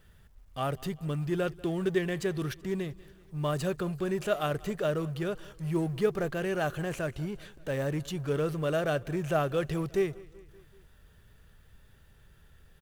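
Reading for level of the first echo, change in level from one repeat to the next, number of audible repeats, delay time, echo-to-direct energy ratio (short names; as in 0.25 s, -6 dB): -22.0 dB, -4.5 dB, 3, 0.191 s, -20.0 dB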